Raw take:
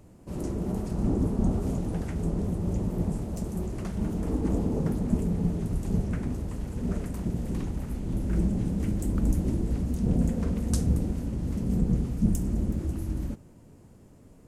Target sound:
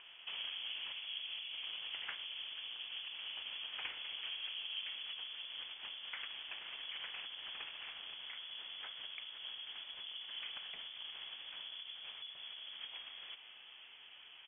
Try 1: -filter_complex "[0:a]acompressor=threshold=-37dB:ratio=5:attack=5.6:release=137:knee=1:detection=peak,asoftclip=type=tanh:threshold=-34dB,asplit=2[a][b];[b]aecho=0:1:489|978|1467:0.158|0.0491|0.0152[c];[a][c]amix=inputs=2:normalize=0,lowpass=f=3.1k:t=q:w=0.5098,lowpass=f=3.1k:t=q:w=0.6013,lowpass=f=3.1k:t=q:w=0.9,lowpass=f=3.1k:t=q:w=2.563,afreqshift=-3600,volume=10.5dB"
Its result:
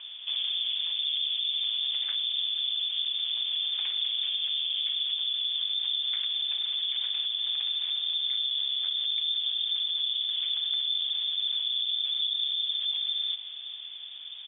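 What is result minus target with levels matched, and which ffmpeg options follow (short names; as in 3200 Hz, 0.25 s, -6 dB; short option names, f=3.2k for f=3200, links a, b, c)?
500 Hz band -18.5 dB
-filter_complex "[0:a]acompressor=threshold=-37dB:ratio=5:attack=5.6:release=137:knee=1:detection=peak,highpass=700,asoftclip=type=tanh:threshold=-34dB,asplit=2[a][b];[b]aecho=0:1:489|978|1467:0.158|0.0491|0.0152[c];[a][c]amix=inputs=2:normalize=0,lowpass=f=3.1k:t=q:w=0.5098,lowpass=f=3.1k:t=q:w=0.6013,lowpass=f=3.1k:t=q:w=0.9,lowpass=f=3.1k:t=q:w=2.563,afreqshift=-3600,volume=10.5dB"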